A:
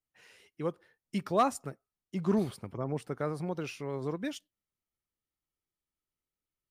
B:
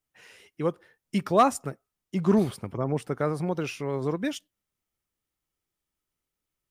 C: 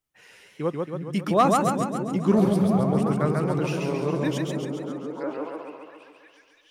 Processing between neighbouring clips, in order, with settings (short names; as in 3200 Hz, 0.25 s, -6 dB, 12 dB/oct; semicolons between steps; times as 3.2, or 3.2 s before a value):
bell 4300 Hz -3 dB 0.25 oct; gain +6.5 dB
delay with a stepping band-pass 0.333 s, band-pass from 170 Hz, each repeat 0.7 oct, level -1.5 dB; spectral gain 5.17–5.56, 300–5300 Hz +10 dB; warbling echo 0.137 s, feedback 61%, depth 109 cents, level -3 dB